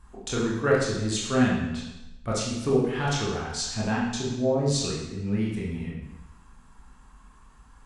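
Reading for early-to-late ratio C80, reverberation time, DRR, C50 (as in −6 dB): 4.0 dB, 0.95 s, −5.5 dB, 1.0 dB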